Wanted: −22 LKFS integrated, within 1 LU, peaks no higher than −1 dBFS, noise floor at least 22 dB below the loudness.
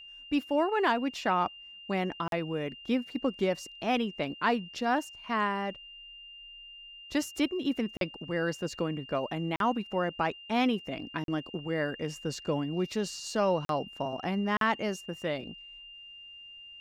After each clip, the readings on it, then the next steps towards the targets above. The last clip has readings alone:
number of dropouts 6; longest dropout 42 ms; interfering tone 2,800 Hz; level of the tone −46 dBFS; integrated loudness −31.5 LKFS; sample peak −15.0 dBFS; target loudness −22.0 LKFS
→ repair the gap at 0:02.28/0:07.97/0:09.56/0:11.24/0:13.65/0:14.57, 42 ms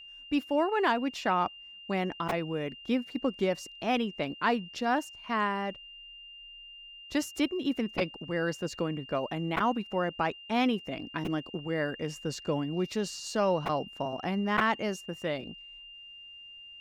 number of dropouts 0; interfering tone 2,800 Hz; level of the tone −46 dBFS
→ notch filter 2,800 Hz, Q 30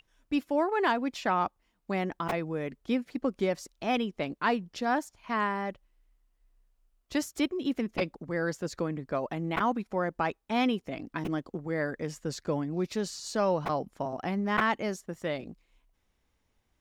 interfering tone none found; integrated loudness −31.5 LKFS; sample peak −11.5 dBFS; target loudness −22.0 LKFS
→ level +9.5 dB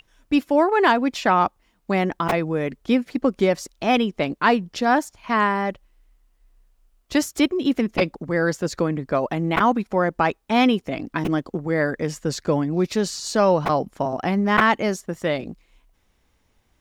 integrated loudness −22.0 LKFS; sample peak −2.0 dBFS; background noise floor −65 dBFS

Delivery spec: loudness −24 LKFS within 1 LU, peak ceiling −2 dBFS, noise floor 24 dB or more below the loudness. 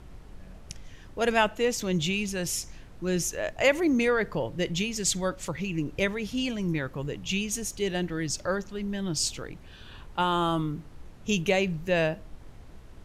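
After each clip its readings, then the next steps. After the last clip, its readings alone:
background noise floor −48 dBFS; target noise floor −52 dBFS; integrated loudness −28.0 LKFS; sample peak −10.0 dBFS; target loudness −24.0 LKFS
→ noise reduction from a noise print 6 dB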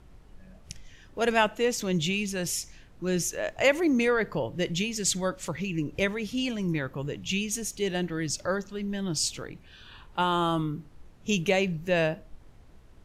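background noise floor −53 dBFS; integrated loudness −28.0 LKFS; sample peak −10.5 dBFS; target loudness −24.0 LKFS
→ level +4 dB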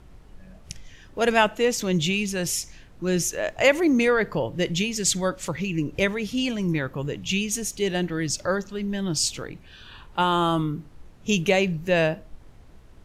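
integrated loudness −24.0 LKFS; sample peak −6.5 dBFS; background noise floor −49 dBFS

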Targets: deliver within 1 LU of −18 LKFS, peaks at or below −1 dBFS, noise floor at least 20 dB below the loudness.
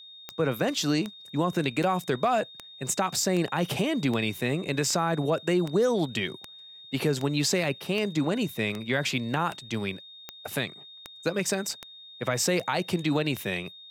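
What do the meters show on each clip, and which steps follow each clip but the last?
number of clicks 18; interfering tone 3,700 Hz; level of the tone −45 dBFS; integrated loudness −28.0 LKFS; sample peak −11.5 dBFS; target loudness −18.0 LKFS
→ click removal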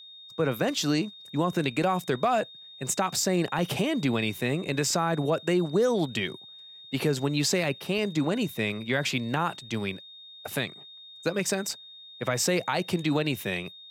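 number of clicks 0; interfering tone 3,700 Hz; level of the tone −45 dBFS
→ notch filter 3,700 Hz, Q 30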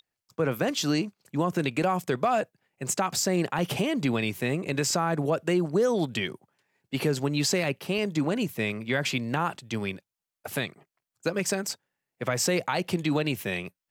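interfering tone none found; integrated loudness −28.0 LKFS; sample peak −12.0 dBFS; target loudness −18.0 LKFS
→ level +10 dB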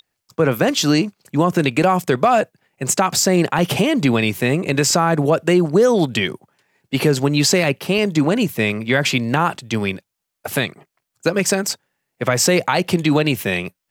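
integrated loudness −18.0 LKFS; sample peak −2.0 dBFS; background noise floor −80 dBFS

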